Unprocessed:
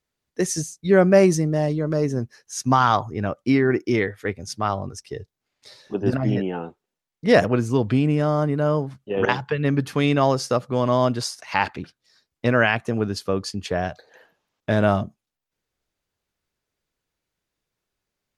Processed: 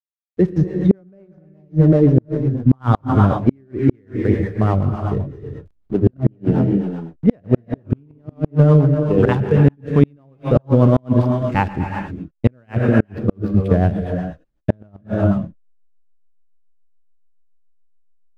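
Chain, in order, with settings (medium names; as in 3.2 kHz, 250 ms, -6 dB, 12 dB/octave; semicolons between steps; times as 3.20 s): low-pass 4.1 kHz 24 dB/octave; tilt EQ -4 dB/octave; hysteresis with a dead band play -34 dBFS; gated-style reverb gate 450 ms rising, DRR 4.5 dB; rotary cabinet horn 8 Hz; inverted gate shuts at -5 dBFS, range -40 dB; trim +3.5 dB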